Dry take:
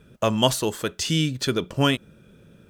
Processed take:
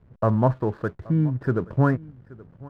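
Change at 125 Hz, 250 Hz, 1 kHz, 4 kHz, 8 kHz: +5.0 dB, +1.0 dB, −0.5 dB, below −30 dB, below −30 dB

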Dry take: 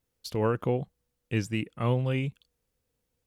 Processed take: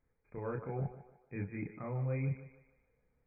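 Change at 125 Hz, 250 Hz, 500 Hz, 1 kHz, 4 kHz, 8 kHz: −7.5 dB, −10.5 dB, −11.5 dB, −11.5 dB, below −40 dB, below −30 dB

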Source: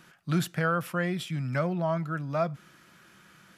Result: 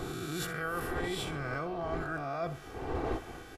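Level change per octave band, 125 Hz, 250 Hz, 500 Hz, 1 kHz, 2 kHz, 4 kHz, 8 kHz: −9.5, −7.0, −4.5, −3.5, −3.0, −0.5, 0.0 decibels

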